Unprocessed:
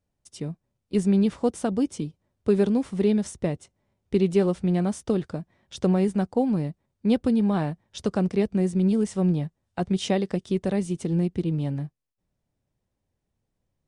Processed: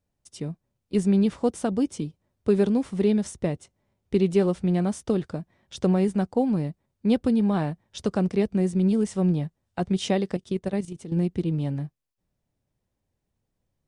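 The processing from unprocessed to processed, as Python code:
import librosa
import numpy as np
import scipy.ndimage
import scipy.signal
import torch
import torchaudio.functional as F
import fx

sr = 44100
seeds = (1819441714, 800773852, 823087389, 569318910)

y = fx.level_steps(x, sr, step_db=12, at=(10.34, 11.17))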